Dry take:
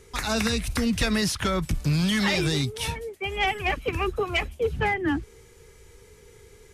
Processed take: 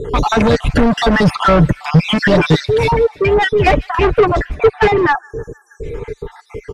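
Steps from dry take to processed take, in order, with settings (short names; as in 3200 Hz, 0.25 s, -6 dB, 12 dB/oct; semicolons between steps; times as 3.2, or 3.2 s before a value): random spectral dropouts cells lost 58%; tilt -4.5 dB/oct; overdrive pedal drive 32 dB, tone 2000 Hz, clips at -1.5 dBFS; comb 6.8 ms, depth 44%; on a send: thin delay 0.155 s, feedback 59%, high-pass 2200 Hz, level -19 dB; on the sum: spectral delete 5.13–5.83, 1800–5400 Hz; in parallel at -1.5 dB: compressor, threshold -24 dBFS, peak gain reduction 18 dB; on the sum: gain -2 dB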